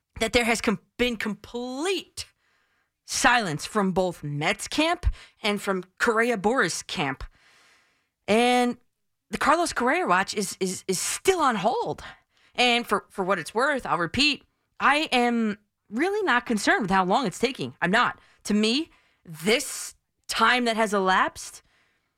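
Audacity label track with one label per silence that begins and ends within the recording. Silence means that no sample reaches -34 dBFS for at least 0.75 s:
2.220000	3.080000	silence
7.250000	8.280000	silence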